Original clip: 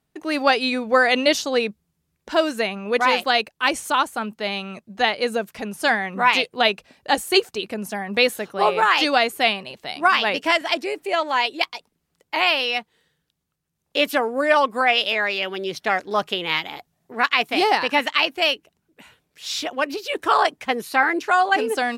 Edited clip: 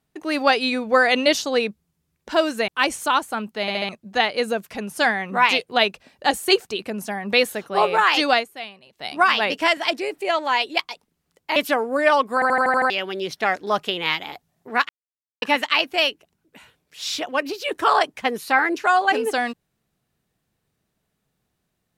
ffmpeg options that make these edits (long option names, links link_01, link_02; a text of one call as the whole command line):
ffmpeg -i in.wav -filter_complex "[0:a]asplit=18[link_01][link_02][link_03][link_04][link_05][link_06][link_07][link_08][link_09][link_10][link_11][link_12][link_13][link_14][link_15][link_16][link_17][link_18];[link_01]atrim=end=2.682[link_19];[link_02]atrim=start=3.518:end=4.522[link_20];[link_03]atrim=start=4.448:end=4.522[link_21];[link_04]atrim=start=4.448:end=4.522[link_22];[link_05]atrim=start=4.448:end=4.522[link_23];[link_06]atrim=start=4.728:end=9.34,asetpts=PTS-STARTPTS,afade=type=out:start_time=4.482:duration=0.13:curve=qua:silence=0.177828[link_24];[link_07]atrim=start=9.34:end=9.76,asetpts=PTS-STARTPTS,volume=-15dB[link_25];[link_08]atrim=start=9.76:end=12.402,asetpts=PTS-STARTPTS,afade=type=in:duration=0.13:curve=qua:silence=0.177828[link_26];[link_09]atrim=start=13.998:end=14.862[link_27];[link_10]atrim=start=14.778:end=14.862[link_28];[link_11]atrim=start=14.778:end=14.862[link_29];[link_12]atrim=start=14.778:end=14.862[link_30];[link_13]atrim=start=14.778:end=14.862[link_31];[link_14]atrim=start=14.778:end=14.862[link_32];[link_15]atrim=start=14.778:end=14.862[link_33];[link_16]atrim=start=15.338:end=17.33,asetpts=PTS-STARTPTS,afade=type=out:start_time=1.988:duration=0.004:curve=hsin[link_34];[link_17]atrim=start=17.33:end=17.86,asetpts=PTS-STARTPTS,volume=0[link_35];[link_18]atrim=start=17.86,asetpts=PTS-STARTPTS,afade=type=in:duration=0.004:curve=hsin[link_36];[link_19][link_20]acrossfade=duration=0.004:curve1=hsin:curve2=hsin[link_37];[link_37][link_21]acrossfade=duration=0.004:curve1=hsin:curve2=hsin[link_38];[link_38][link_22]acrossfade=duration=0.004:curve1=hsin:curve2=hsin[link_39];[link_39][link_23]acrossfade=duration=0.004:curve1=hsin:curve2=hsin[link_40];[link_24][link_25][link_26]concat=n=3:v=0:a=1[link_41];[link_40][link_41]acrossfade=duration=0.004:curve1=hsin:curve2=hsin[link_42];[link_42][link_27]acrossfade=duration=0.004:curve1=hsin:curve2=hsin[link_43];[link_43][link_28]acrossfade=duration=0.004:curve1=hsin:curve2=hsin[link_44];[link_44][link_29]acrossfade=duration=0.004:curve1=hsin:curve2=hsin[link_45];[link_45][link_30]acrossfade=duration=0.004:curve1=hsin:curve2=hsin[link_46];[link_46][link_31]acrossfade=duration=0.004:curve1=hsin:curve2=hsin[link_47];[link_47][link_32]acrossfade=duration=0.004:curve1=hsin:curve2=hsin[link_48];[link_48][link_33]acrossfade=duration=0.004:curve1=hsin:curve2=hsin[link_49];[link_34][link_35][link_36]concat=n=3:v=0:a=1[link_50];[link_49][link_50]acrossfade=duration=0.004:curve1=hsin:curve2=hsin" out.wav